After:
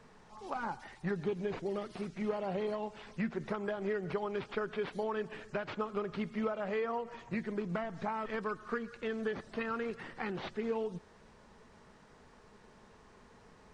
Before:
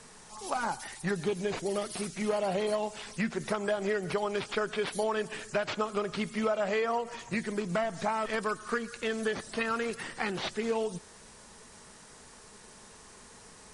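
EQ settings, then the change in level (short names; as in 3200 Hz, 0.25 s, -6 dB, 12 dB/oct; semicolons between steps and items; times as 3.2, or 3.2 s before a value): dynamic EQ 650 Hz, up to -5 dB, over -43 dBFS, Q 3.9; tape spacing loss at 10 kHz 26 dB; -2.5 dB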